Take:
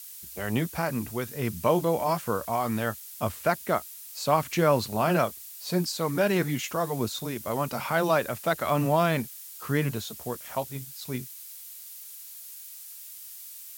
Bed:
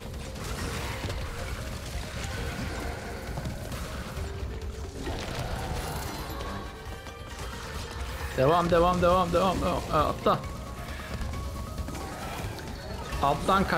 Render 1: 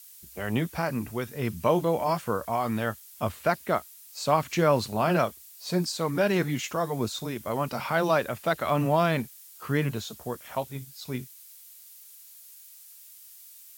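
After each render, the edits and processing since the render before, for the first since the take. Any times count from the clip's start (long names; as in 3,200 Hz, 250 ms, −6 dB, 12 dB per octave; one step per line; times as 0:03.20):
noise reduction from a noise print 6 dB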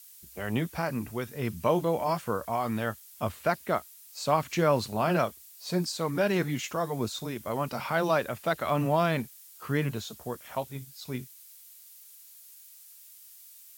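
level −2 dB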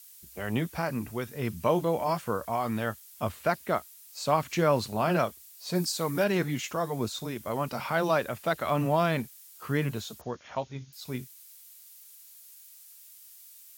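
0:05.75–0:06.24: high-shelf EQ 7,100 Hz +8.5 dB
0:10.21–0:10.93: linear-phase brick-wall low-pass 6,900 Hz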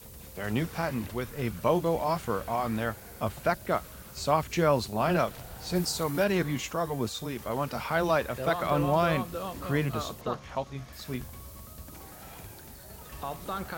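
mix in bed −11.5 dB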